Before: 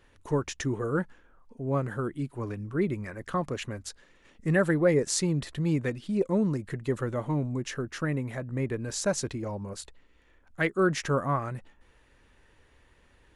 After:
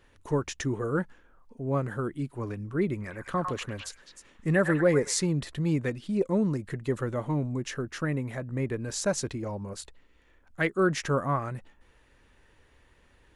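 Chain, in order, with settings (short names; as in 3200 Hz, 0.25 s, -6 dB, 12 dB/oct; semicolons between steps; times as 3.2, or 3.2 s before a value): 2.86–5.26 delay with a stepping band-pass 0.103 s, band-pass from 1200 Hz, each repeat 1.4 oct, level -2 dB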